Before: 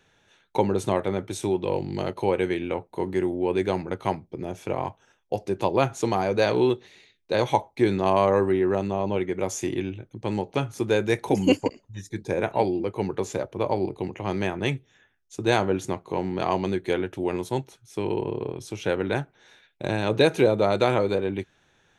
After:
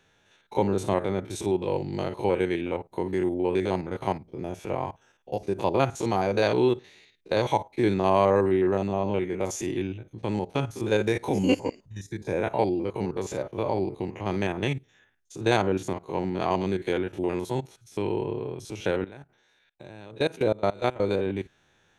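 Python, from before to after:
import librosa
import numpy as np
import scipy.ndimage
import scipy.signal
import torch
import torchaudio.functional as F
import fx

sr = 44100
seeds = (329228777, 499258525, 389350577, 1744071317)

y = fx.spec_steps(x, sr, hold_ms=50)
y = fx.level_steps(y, sr, step_db=22, at=(19.04, 21.0))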